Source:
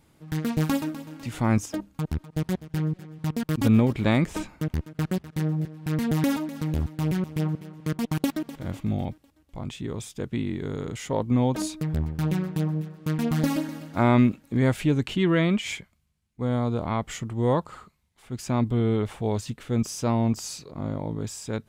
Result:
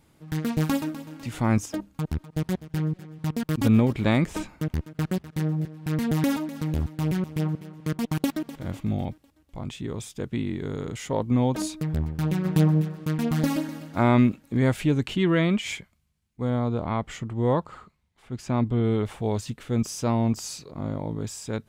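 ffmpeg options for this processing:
ffmpeg -i in.wav -filter_complex "[0:a]asplit=3[link_01][link_02][link_03];[link_01]afade=type=out:start_time=12.44:duration=0.02[link_04];[link_02]acontrast=77,afade=type=in:start_time=12.44:duration=0.02,afade=type=out:start_time=13.04:duration=0.02[link_05];[link_03]afade=type=in:start_time=13.04:duration=0.02[link_06];[link_04][link_05][link_06]amix=inputs=3:normalize=0,asettb=1/sr,asplit=3[link_07][link_08][link_09];[link_07]atrim=end=16.504[link_10];[link_08]atrim=start=16.5:end=18.84,asetpts=PTS-STARTPTS,afade=type=in:duration=0.004:curve=qsin,afade=type=out:start_time=2.336:duration=0.004:curve=qsin,lowpass=frequency=3700:poles=1[link_11];[link_09]atrim=start=18.836[link_12];[link_10][link_11]acrossfade=duration=0.004:curve1=hsin:curve2=qsin[link_13];[link_13][link_12]acrossfade=duration=0.004:curve1=qsin:curve2=hsin" out.wav

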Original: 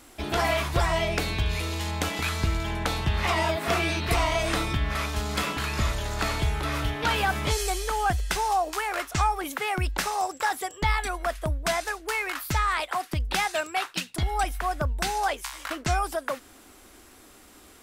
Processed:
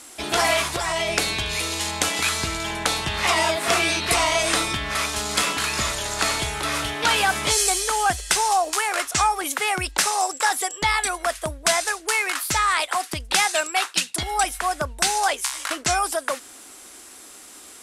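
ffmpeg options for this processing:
ffmpeg -i in.wav -filter_complex "[0:a]asettb=1/sr,asplit=3[link_01][link_02][link_03];[link_01]atrim=end=0.614[link_04];[link_02]atrim=start=0.61:end=1.09,asetpts=PTS-STARTPTS,afade=type=in:duration=0.004:curve=qsin,afade=type=out:start_time=0.476:duration=0.004:curve=qsin,acompressor=threshold=-23dB:ratio=6:attack=3.2:release=140:knee=1:detection=peak[link_05];[link_03]atrim=start=1.086[link_06];[link_04][link_05]acrossfade=duration=0.004:curve1=hsin:curve2=qsin[link_07];[link_07][link_06]acrossfade=duration=0.004:curve1=qsin:curve2=hsin,lowpass=frequency=9900:width=0.5412,lowpass=frequency=9900:width=1.3066,aemphasis=mode=production:type=bsi,volume=4.5dB" out.wav

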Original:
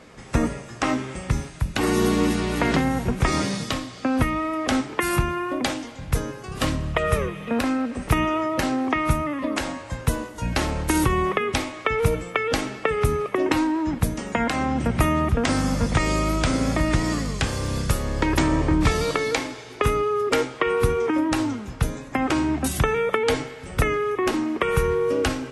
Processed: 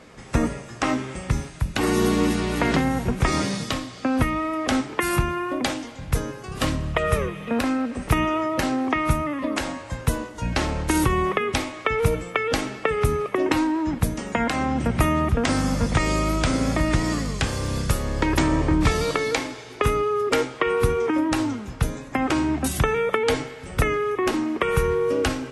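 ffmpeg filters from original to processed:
ffmpeg -i in.wav -filter_complex "[0:a]asettb=1/sr,asplit=3[link_01][link_02][link_03];[link_01]atrim=end=10.184[link_04];[link_02]atrim=start=10.18:end=10.91,asetpts=PTS-STARTPTS,afade=type=in:duration=0.004:curve=qsin,afade=type=out:start_time=0.726:duration=0.004:curve=qsin,lowpass=8500[link_05];[link_03]atrim=start=10.906[link_06];[link_04][link_05]acrossfade=duration=0.004:curve1=hsin:curve2=qsin[link_07];[link_07][link_06]acrossfade=duration=0.004:curve1=qsin:curve2=hsin" out.wav

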